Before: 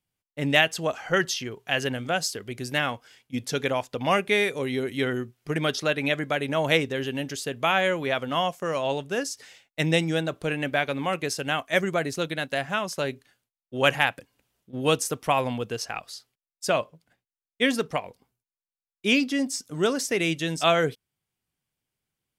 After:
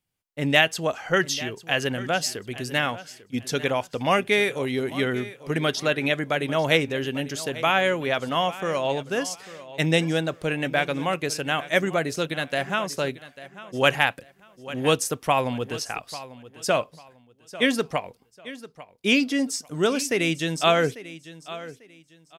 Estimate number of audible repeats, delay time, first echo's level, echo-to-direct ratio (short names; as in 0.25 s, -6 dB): 2, 0.845 s, -16.5 dB, -16.0 dB